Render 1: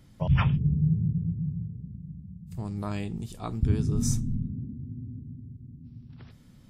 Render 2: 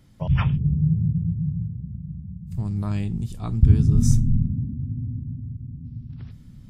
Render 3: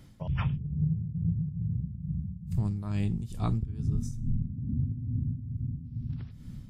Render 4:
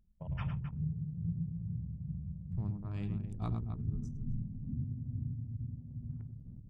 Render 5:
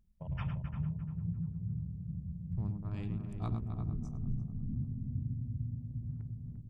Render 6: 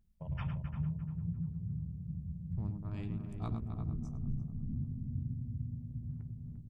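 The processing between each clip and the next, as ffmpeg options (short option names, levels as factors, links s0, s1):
-af "asubboost=boost=4:cutoff=230"
-af "acompressor=threshold=0.0501:ratio=16,tremolo=f=2.3:d=0.65,volume=1.41"
-af "aecho=1:1:105|262.4:0.447|0.355,anlmdn=0.398,volume=0.398"
-filter_complex "[0:a]asplit=2[s0][s1];[s1]adelay=347,lowpass=f=1300:p=1,volume=0.473,asplit=2[s2][s3];[s3]adelay=347,lowpass=f=1300:p=1,volume=0.38,asplit=2[s4][s5];[s5]adelay=347,lowpass=f=1300:p=1,volume=0.38,asplit=2[s6][s7];[s7]adelay=347,lowpass=f=1300:p=1,volume=0.38[s8];[s0][s2][s4][s6][s8]amix=inputs=5:normalize=0"
-filter_complex "[0:a]asplit=2[s0][s1];[s1]adelay=13,volume=0.211[s2];[s0][s2]amix=inputs=2:normalize=0,volume=0.891"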